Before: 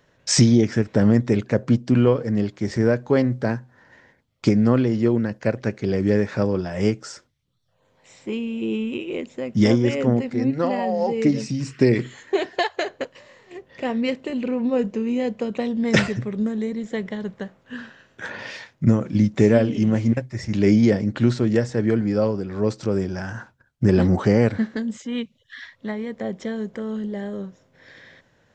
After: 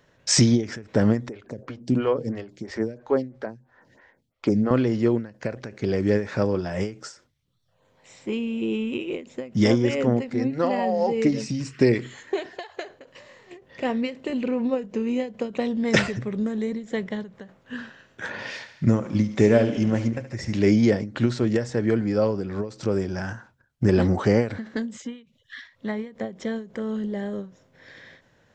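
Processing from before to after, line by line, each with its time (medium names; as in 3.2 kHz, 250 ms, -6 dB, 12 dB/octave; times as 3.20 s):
1.29–4.71 s: lamp-driven phase shifter 3 Hz
18.29–20.69 s: thinning echo 72 ms, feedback 62%, high-pass 320 Hz, level -12.5 dB
whole clip: dynamic bell 160 Hz, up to -4 dB, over -27 dBFS, Q 0.94; endings held to a fixed fall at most 160 dB/s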